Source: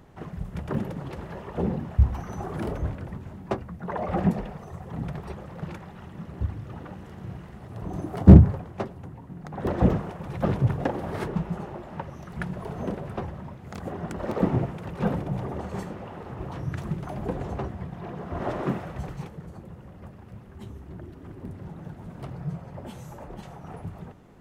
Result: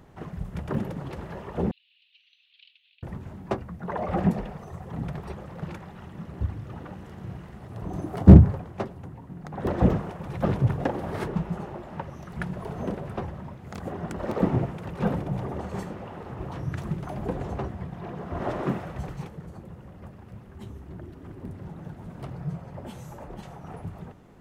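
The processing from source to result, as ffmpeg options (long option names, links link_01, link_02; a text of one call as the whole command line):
ffmpeg -i in.wav -filter_complex "[0:a]asettb=1/sr,asplit=3[link_01][link_02][link_03];[link_01]atrim=end=1.714[link_04];[link_02]atrim=start=1.71:end=3.03,asetpts=PTS-STARTPTS,afade=type=in:duration=0.004:curve=qsin,afade=type=out:start_time=1.316:duration=0.004:curve=qsin,asuperpass=centerf=3300:order=8:qfactor=1.9[link_05];[link_03]atrim=start=3.026[link_06];[link_04][link_05]acrossfade=duration=0.004:curve1=hsin:curve2=qsin[link_07];[link_07][link_06]acrossfade=duration=0.004:curve1=qsin:curve2=hsin" out.wav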